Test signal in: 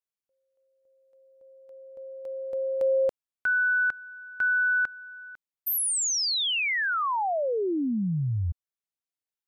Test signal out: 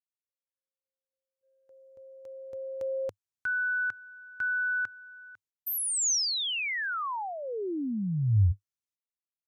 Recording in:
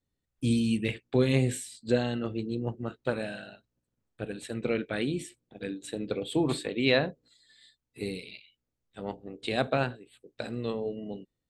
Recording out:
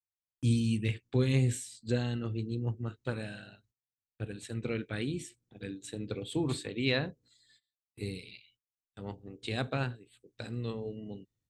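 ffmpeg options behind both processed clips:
-af "agate=range=0.0447:threshold=0.00282:ratio=16:release=300:detection=rms,equalizer=f=100:t=o:w=0.67:g=12,equalizer=f=630:t=o:w=0.67:g=-6,equalizer=f=6300:t=o:w=0.67:g=6,volume=0.562"

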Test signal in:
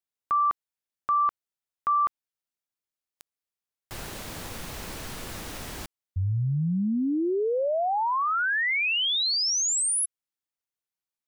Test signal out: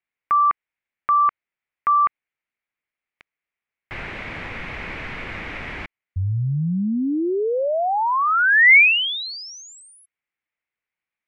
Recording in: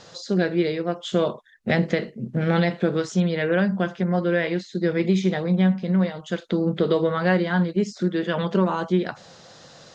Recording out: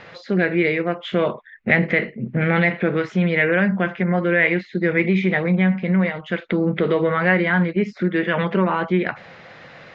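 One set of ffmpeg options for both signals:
-filter_complex "[0:a]asplit=2[s0][s1];[s1]alimiter=limit=0.15:level=0:latency=1,volume=1.41[s2];[s0][s2]amix=inputs=2:normalize=0,lowpass=f=2200:t=q:w=4.1,volume=0.631"

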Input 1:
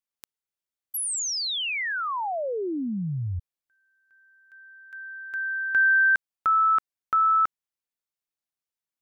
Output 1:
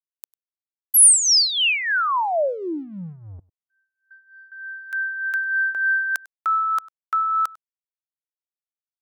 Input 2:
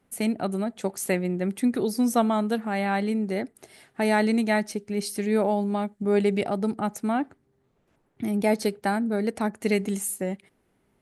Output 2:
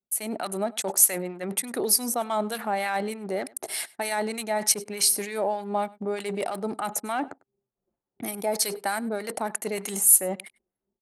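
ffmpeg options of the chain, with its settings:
-filter_complex "[0:a]areverse,acompressor=threshold=0.02:ratio=8:attack=0.16:release=73:knee=6:detection=rms,areverse,aemphasis=mode=production:type=75kf,acrossover=split=1100[s0][s1];[s0]aeval=exprs='val(0)*(1-0.7/2+0.7/2*cos(2*PI*3.3*n/s))':c=same[s2];[s1]aeval=exprs='val(0)*(1-0.7/2-0.7/2*cos(2*PI*3.3*n/s))':c=same[s3];[s2][s3]amix=inputs=2:normalize=0,anlmdn=0.001,equalizer=f=770:t=o:w=1.9:g=7,dynaudnorm=f=160:g=3:m=4.47,highpass=f=480:p=1,asplit=2[s4][s5];[s5]aecho=0:1:99:0.0708[s6];[s4][s6]amix=inputs=2:normalize=0"

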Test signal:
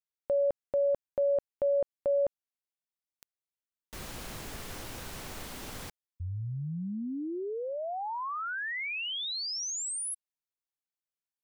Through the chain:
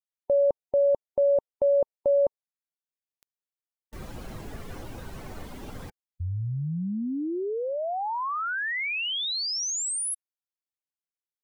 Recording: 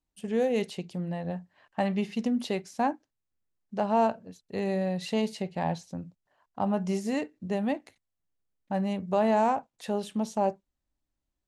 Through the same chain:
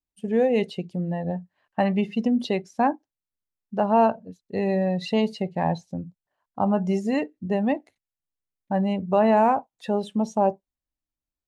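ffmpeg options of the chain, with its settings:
-af "afftdn=nr=14:nf=-42,volume=1.88"

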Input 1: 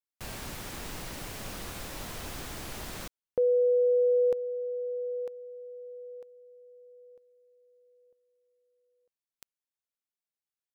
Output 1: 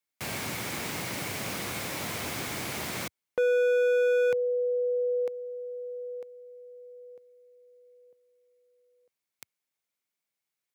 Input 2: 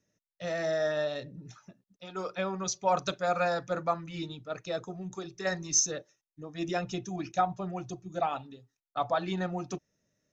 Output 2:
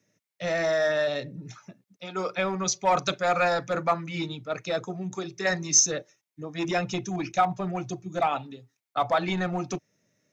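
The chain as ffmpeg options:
-filter_complex "[0:a]highpass=f=95:w=0.5412,highpass=f=95:w=1.3066,equalizer=f=2200:t=o:w=0.22:g=7.5,acrossover=split=760[s0][s1];[s0]asoftclip=type=hard:threshold=0.0266[s2];[s2][s1]amix=inputs=2:normalize=0,volume=2"

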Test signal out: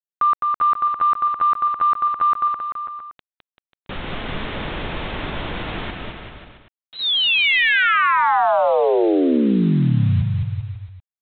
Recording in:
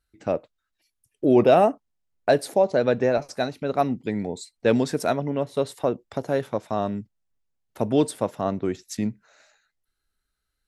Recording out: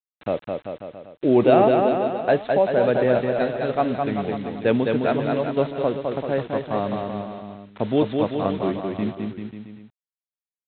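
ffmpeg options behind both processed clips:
-af "aresample=8000,acrusher=bits=6:mix=0:aa=0.000001,aresample=44100,aecho=1:1:210|388.5|540.2|669.2|778.8:0.631|0.398|0.251|0.158|0.1"

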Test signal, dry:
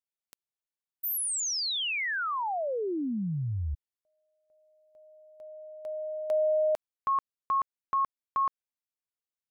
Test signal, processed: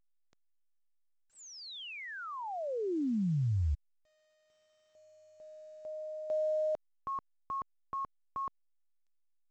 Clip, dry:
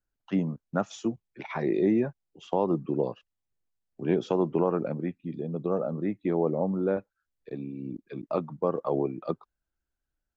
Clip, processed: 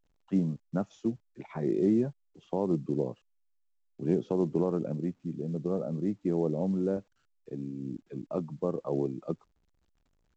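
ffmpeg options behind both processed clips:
-filter_complex "[0:a]tiltshelf=f=660:g=8,acrossover=split=4300[s0][s1];[s1]acompressor=threshold=0.00447:ratio=4:attack=1:release=60[s2];[s0][s2]amix=inputs=2:normalize=0,volume=0.473" -ar 16000 -c:a pcm_alaw

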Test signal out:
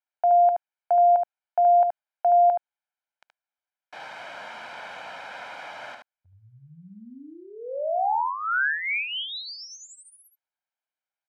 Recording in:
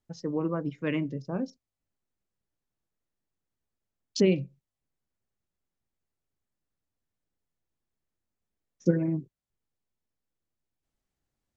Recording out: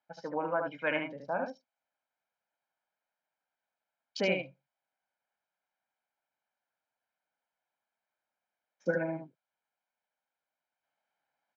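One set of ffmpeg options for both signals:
-af "highpass=670,lowpass=2100,aecho=1:1:1.3:0.67,aecho=1:1:74:0.562,volume=2.11"

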